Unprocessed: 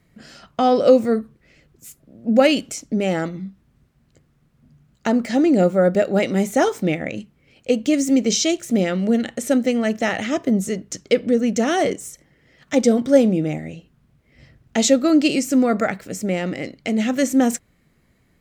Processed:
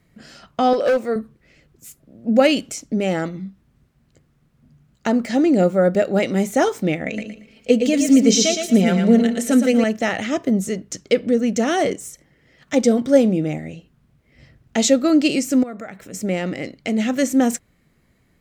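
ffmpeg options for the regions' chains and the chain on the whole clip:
-filter_complex "[0:a]asettb=1/sr,asplit=3[a][b][c];[a]atrim=end=0.734[d];[b]atrim=start=0.73:end=1.16,asetpts=PTS-STARTPTS,afade=t=in:d=0.004:c=qsin,afade=t=out:st=0.426:d=0.004:c=qsin,bass=f=250:g=-15,treble=f=4k:g=-4,volume=13.5dB,asoftclip=hard,volume=-13.5dB[e];[c]atrim=start=1.156[f];[d][e]acrossfade=d=0.004:c1=hsin:c2=qsin[g];[g][f]acrossfade=d=0.004:c1=qsin:c2=hsin,asettb=1/sr,asplit=3[h][i][j];[h]atrim=end=7.064[k];[i]atrim=start=7.06:end=9.84,asetpts=PTS-STARTPTS,afade=t=in:d=0.004:c=qsin,afade=t=out:st=2.776:d=0.004:c=qsin,aecho=1:1:4.5:0.73,atrim=end_sample=122598,aecho=1:1:115|230|345|460:0.501|0.145|0.0421|0.0122,atrim=end_sample=122598[l];[j]atrim=start=9.836[m];[k][l]acrossfade=d=0.004:c1=hsin:c2=qsin[n];[n][m]acrossfade=d=0.004:c1=qsin:c2=hsin,asettb=1/sr,asplit=3[o][p][q];[o]atrim=end=15.634[r];[p]atrim=start=15.63:end=16.14,asetpts=PTS-STARTPTS,afade=t=in:d=0.004:c=qsin,afade=t=out:st=0.506:d=0.004:c=qsin,bandreject=f=4.6k:w=5.5,acompressor=threshold=-36dB:ratio=2.5:attack=3.2:release=140:knee=1:detection=peak[s];[q]atrim=start=16.136[t];[r][s]acrossfade=d=0.004:c1=hsin:c2=qsin[u];[u][t]acrossfade=d=0.004:c1=qsin:c2=hsin"

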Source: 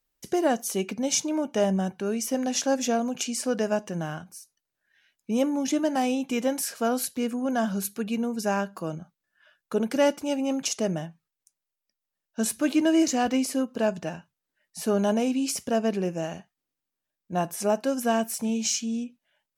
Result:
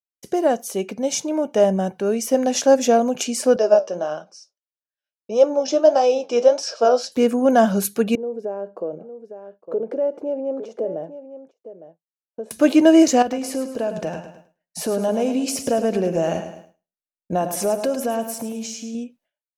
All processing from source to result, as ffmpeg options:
-filter_complex "[0:a]asettb=1/sr,asplit=3[a][b][c];[a]atrim=end=3.564[d];[b]atrim=start=3.56:end=7.12,asetpts=PTS-STARTPTS,afade=t=in:d=0.004:c=qsin,afade=t=out:st=3.556:d=0.004:c=qsin,flanger=delay=5.9:depth=6.6:regen=62:speed=1.6:shape=sinusoidal,highpass=f=230:w=0.5412,highpass=f=230:w=1.3066,equalizer=f=260:t=q:w=4:g=-10,equalizer=f=590:t=q:w=4:g=8,equalizer=f=1.3k:t=q:w=4:g=3,equalizer=f=2k:t=q:w=4:g=-10,equalizer=f=5.3k:t=q:w=4:g=10,lowpass=f=6.2k:w=0.5412,lowpass=f=6.2k:w=1.3066[e];[c]atrim=start=7.116[f];[d][e]acrossfade=d=0.004:c1=hsin:c2=qsin[g];[g][f]acrossfade=d=0.004:c1=qsin:c2=hsin,asettb=1/sr,asplit=3[h][i][j];[h]atrim=end=8.154[k];[i]atrim=start=8.15:end=12.51,asetpts=PTS-STARTPTS,afade=t=in:d=0.004:c=qsin,afade=t=out:st=4.356:d=0.004:c=qsin,acompressor=threshold=-30dB:ratio=10:attack=3.2:release=140:knee=1:detection=peak,bandpass=f=460:t=q:w=2.4,aecho=1:1:857:0.282,atrim=end_sample=192276[l];[j]atrim=start=12.506[m];[k][l]acrossfade=d=0.004:c1=hsin:c2=qsin[n];[n][m]acrossfade=d=0.004:c1=qsin:c2=hsin,asettb=1/sr,asplit=3[o][p][q];[o]atrim=end=13.224[r];[p]atrim=start=13.22:end=18.95,asetpts=PTS-STARTPTS,afade=t=in:d=0.004:c=qsin,afade=t=out:st=5.726:d=0.004:c=qsin,acompressor=threshold=-32dB:ratio=5:attack=3.2:release=140:knee=1:detection=peak,aecho=1:1:106|212|318|424|530:0.335|0.147|0.0648|0.0285|0.0126,atrim=end_sample=252693[s];[q]atrim=start=18.946[t];[r][s]acrossfade=d=0.004:c1=hsin:c2=qsin[u];[u][t]acrossfade=d=0.004:c1=qsin:c2=hsin,agate=range=-33dB:threshold=-53dB:ratio=3:detection=peak,equalizer=f=540:t=o:w=1.2:g=8.5,dynaudnorm=f=280:g=13:m=11.5dB,volume=-1dB"

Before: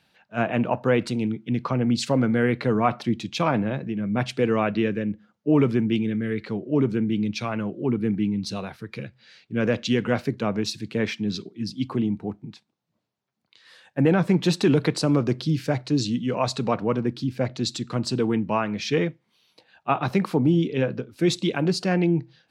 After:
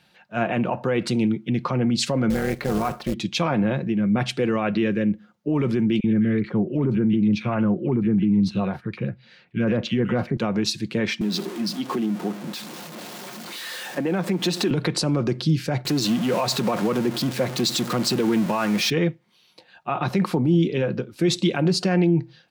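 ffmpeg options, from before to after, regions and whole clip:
-filter_complex "[0:a]asettb=1/sr,asplit=3[a][b][c];[a]atrim=end=2.304[d];[b]atrim=start=2.3:end=3.14,asetpts=PTS-STARTPTS,afade=t=in:d=0.004:c=qsin,afade=t=out:st=0.836:d=0.004:c=qsin,highshelf=f=5k:g=-8,tremolo=f=280:d=0.71,acrusher=bits=4:mode=log:mix=0:aa=0.000001[e];[c]atrim=start=3.136[f];[d][e]acrossfade=d=0.004:c1=hsin:c2=qsin[g];[g][f]acrossfade=d=0.004:c1=qsin:c2=hsin,asettb=1/sr,asplit=3[h][i][j];[h]atrim=end=6.004[k];[i]atrim=start=6:end=10.37,asetpts=PTS-STARTPTS,afade=t=in:d=0.004:c=qsin,afade=t=out:st=4.366:d=0.004:c=qsin,bass=f=250:g=4,treble=f=4k:g=-14,acrossover=split=1900[l][m];[l]adelay=40[n];[n][m]amix=inputs=2:normalize=0,atrim=end_sample=192717[o];[j]atrim=start=10.366[p];[k][o]acrossfade=d=0.004:c1=hsin:c2=qsin[q];[q][p]acrossfade=d=0.004:c1=qsin:c2=hsin,asettb=1/sr,asplit=3[r][s][t];[r]atrim=end=11.214[u];[s]atrim=start=11.21:end=14.71,asetpts=PTS-STARTPTS,afade=t=in:d=0.004:c=qsin,afade=t=out:st=3.496:d=0.004:c=qsin,aeval=exprs='val(0)+0.5*0.0188*sgn(val(0))':c=same,acompressor=threshold=-24dB:ratio=4:attack=3.2:release=140:knee=1:detection=peak,highpass=f=190:w=0.5412,highpass=f=190:w=1.3066[v];[t]atrim=start=14.706[w];[u][v]acrossfade=d=0.004:c1=hsin:c2=qsin[x];[x][w]acrossfade=d=0.004:c1=qsin:c2=hsin,asettb=1/sr,asplit=3[y][z][aa];[y]atrim=end=15.854[ab];[z]atrim=start=15.85:end=18.9,asetpts=PTS-STARTPTS,afade=t=in:d=0.004:c=qsin,afade=t=out:st=3.046:d=0.004:c=qsin,aeval=exprs='val(0)+0.5*0.0335*sgn(val(0))':c=same,highpass=160[ac];[aa]atrim=start=18.896[ad];[ab][ac]acrossfade=d=0.004:c1=hsin:c2=qsin[ae];[ae][ad]acrossfade=d=0.004:c1=qsin:c2=hsin,alimiter=limit=-18dB:level=0:latency=1:release=55,aecho=1:1:5.6:0.31,volume=4.5dB"

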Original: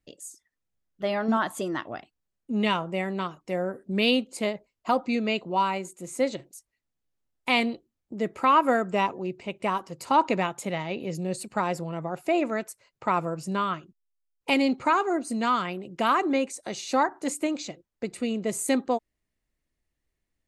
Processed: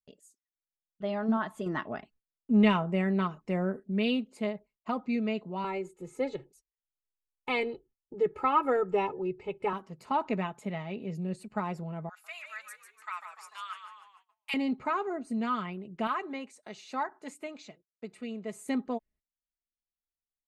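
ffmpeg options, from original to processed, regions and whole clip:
-filter_complex "[0:a]asettb=1/sr,asplit=3[a][b][c];[a]atrim=end=1.664[d];[b]atrim=start=1.66:end=3.8,asetpts=PTS-STARTPTS,afade=t=in:d=0.004:c=qsin,afade=t=out:st=2.136:d=0.004:c=qsin,equalizer=f=3.3k:t=o:w=0.25:g=-3.5,acontrast=67[e];[c]atrim=start=3.796[f];[d][e]acrossfade=d=0.004:c1=hsin:c2=qsin[g];[g][f]acrossfade=d=0.004:c1=qsin:c2=hsin,asettb=1/sr,asplit=3[h][i][j];[h]atrim=end=5.644[k];[i]atrim=start=5.64:end=9.73,asetpts=PTS-STARTPTS,afade=t=in:d=0.004:c=qsin,afade=t=out:st=4.086:d=0.004:c=qsin,tiltshelf=f=1.4k:g=3,aecho=1:1:2.3:0.99,atrim=end_sample=180369[l];[j]atrim=start=9.726[m];[k][l]acrossfade=d=0.004:c1=hsin:c2=qsin[n];[n][m]acrossfade=d=0.004:c1=qsin:c2=hsin,asettb=1/sr,asplit=3[o][p][q];[o]atrim=end=12.094[r];[p]atrim=start=12.09:end=14.54,asetpts=PTS-STARTPTS,afade=t=in:d=0.004:c=qsin,afade=t=out:st=2.446:d=0.004:c=qsin,highpass=f=1.3k:w=0.5412,highpass=f=1.3k:w=1.3066,aemphasis=mode=production:type=50kf,asplit=7[s][t][u][v][w][x][y];[t]adelay=147,afreqshift=-67,volume=-7.5dB[z];[u]adelay=294,afreqshift=-134,volume=-13.3dB[aa];[v]adelay=441,afreqshift=-201,volume=-19.2dB[ab];[w]adelay=588,afreqshift=-268,volume=-25dB[ac];[x]adelay=735,afreqshift=-335,volume=-30.9dB[ad];[y]adelay=882,afreqshift=-402,volume=-36.7dB[ae];[s][z][aa][ab][ac][ad][ae]amix=inputs=7:normalize=0,atrim=end_sample=108045[af];[q]atrim=start=14.536[ag];[r][af]acrossfade=d=0.004:c1=hsin:c2=qsin[ah];[ah][ag]acrossfade=d=0.004:c1=qsin:c2=hsin,asettb=1/sr,asplit=3[ai][aj][ak];[ai]atrim=end=16.074[al];[aj]atrim=start=16.07:end=18.66,asetpts=PTS-STARTPTS,afade=t=in:d=0.004:c=qsin,afade=t=out:st=2.586:d=0.004:c=qsin,highpass=54,lowshelf=f=440:g=-9.5[am];[ak]atrim=start=18.656[an];[al][am]acrossfade=d=0.004:c1=hsin:c2=qsin[ao];[ao][an]acrossfade=d=0.004:c1=qsin:c2=hsin,bass=f=250:g=5,treble=f=4k:g=-11,aecho=1:1:4.7:0.49,agate=range=-21dB:threshold=-52dB:ratio=16:detection=peak,volume=-8.5dB"

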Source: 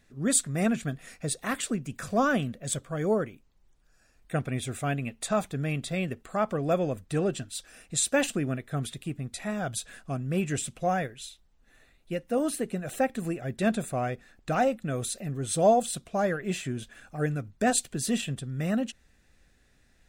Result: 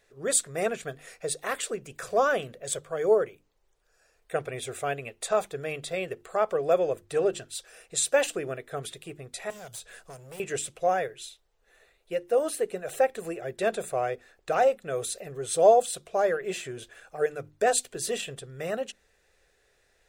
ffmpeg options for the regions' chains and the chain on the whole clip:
-filter_complex "[0:a]asettb=1/sr,asplit=3[a][b][c];[a]atrim=end=9.504[d];[b]atrim=start=9.5:end=10.4,asetpts=PTS-STARTPTS,afade=t=in:d=0.004:c=qsin,afade=t=out:st=0.896:d=0.004:c=qsin,bass=f=250:g=4,treble=f=4k:g=9,acrossover=split=210|3600[e][f][g];[e]acompressor=threshold=-40dB:ratio=4[h];[f]acompressor=threshold=-43dB:ratio=4[i];[g]acompressor=threshold=-40dB:ratio=4[j];[h][i][j]amix=inputs=3:normalize=0,asoftclip=type=hard:threshold=-36dB[k];[c]atrim=start=10.396[l];[d][k]acrossfade=d=0.004:c1=hsin:c2=qsin[m];[m][l]acrossfade=d=0.004:c1=qsin:c2=hsin,lowshelf=f=330:t=q:w=3:g=-8.5,bandreject=f=50:t=h:w=6,bandreject=f=100:t=h:w=6,bandreject=f=150:t=h:w=6,bandreject=f=200:t=h:w=6,bandreject=f=250:t=h:w=6,bandreject=f=300:t=h:w=6,bandreject=f=350:t=h:w=6"

